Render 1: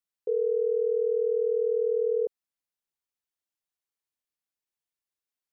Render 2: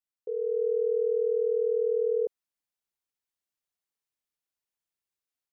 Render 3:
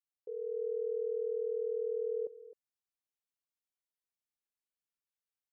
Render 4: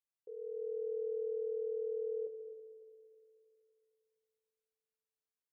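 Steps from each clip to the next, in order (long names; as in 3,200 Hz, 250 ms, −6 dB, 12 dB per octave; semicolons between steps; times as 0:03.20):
automatic gain control gain up to 6 dB; level −6.5 dB
single-tap delay 261 ms −16.5 dB; level −9 dB
convolution reverb RT60 2.8 s, pre-delay 12 ms, DRR 4.5 dB; level −6 dB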